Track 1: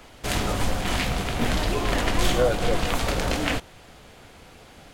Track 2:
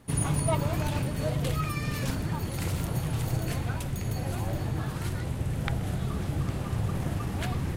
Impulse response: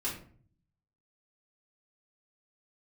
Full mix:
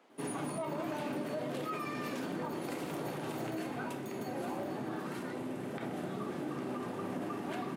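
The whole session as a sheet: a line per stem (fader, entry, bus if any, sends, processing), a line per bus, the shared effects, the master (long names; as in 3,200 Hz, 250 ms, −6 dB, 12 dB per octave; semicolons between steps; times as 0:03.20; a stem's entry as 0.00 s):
−13.0 dB, 0.00 s, no send, downward compressor, threshold −25 dBFS, peak gain reduction 9.5 dB
−3.5 dB, 0.10 s, send −4 dB, no processing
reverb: on, RT60 0.50 s, pre-delay 3 ms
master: high-pass filter 230 Hz 24 dB per octave; high-shelf EQ 2,300 Hz −11.5 dB; brickwall limiter −29 dBFS, peak gain reduction 11.5 dB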